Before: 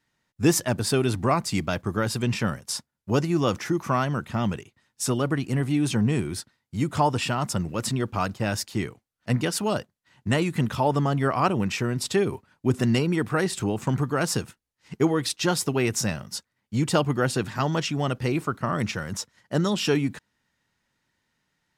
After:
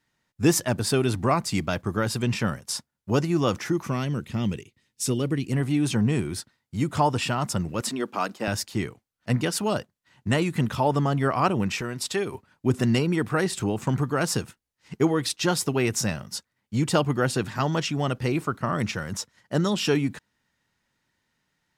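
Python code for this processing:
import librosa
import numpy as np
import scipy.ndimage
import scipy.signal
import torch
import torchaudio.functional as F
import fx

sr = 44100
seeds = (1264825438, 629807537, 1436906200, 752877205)

y = fx.band_shelf(x, sr, hz=1000.0, db=-9.5, octaves=1.7, at=(3.87, 5.52))
y = fx.highpass(y, sr, hz=220.0, slope=24, at=(7.81, 8.48))
y = fx.low_shelf(y, sr, hz=390.0, db=-9.0, at=(11.81, 12.34))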